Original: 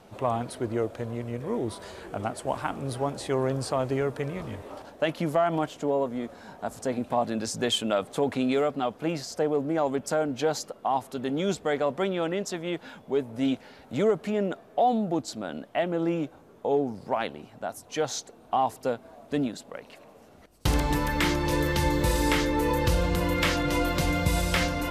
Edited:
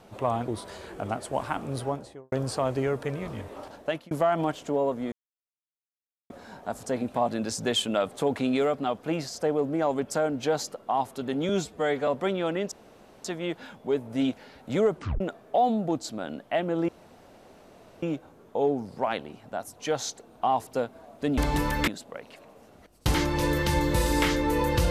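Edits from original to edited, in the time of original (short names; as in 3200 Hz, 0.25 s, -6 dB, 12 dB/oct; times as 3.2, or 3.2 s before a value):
0.48–1.62 cut
2.91–3.46 studio fade out
4.96–5.25 fade out
6.26 insert silence 1.18 s
11.45–11.84 stretch 1.5×
12.48 insert room tone 0.53 s
14.18 tape stop 0.26 s
16.12 insert room tone 1.14 s
20.74–21.24 move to 19.47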